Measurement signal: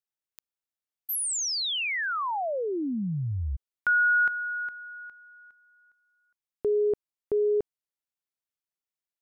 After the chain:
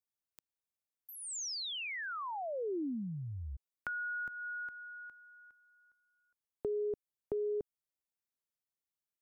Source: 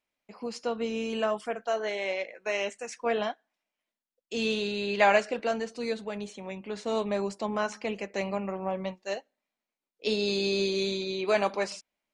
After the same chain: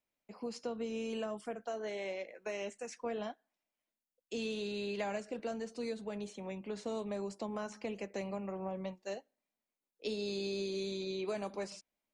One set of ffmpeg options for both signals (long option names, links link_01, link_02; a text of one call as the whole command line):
ffmpeg -i in.wav -filter_complex "[0:a]equalizer=frequency=2300:width=0.35:gain=-5.5,acrossover=split=330|6800[link_01][link_02][link_03];[link_01]acompressor=threshold=-41dB:ratio=4[link_04];[link_02]acompressor=threshold=-38dB:ratio=4[link_05];[link_03]acompressor=threshold=-57dB:ratio=4[link_06];[link_04][link_05][link_06]amix=inputs=3:normalize=0,volume=-1.5dB" out.wav